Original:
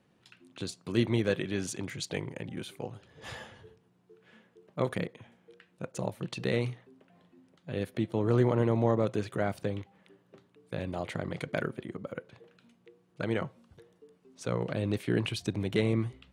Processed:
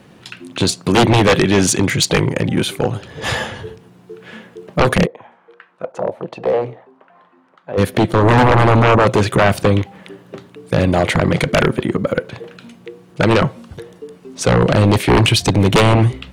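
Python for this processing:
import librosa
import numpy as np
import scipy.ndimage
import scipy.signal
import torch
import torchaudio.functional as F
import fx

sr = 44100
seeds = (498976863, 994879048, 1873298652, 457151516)

y = fx.fold_sine(x, sr, drive_db=13, ceiling_db=-12.5)
y = fx.auto_wah(y, sr, base_hz=520.0, top_hz=1200.0, q=2.2, full_db=-15.5, direction='down', at=(5.05, 7.77), fade=0.02)
y = y * 10.0 ** (6.0 / 20.0)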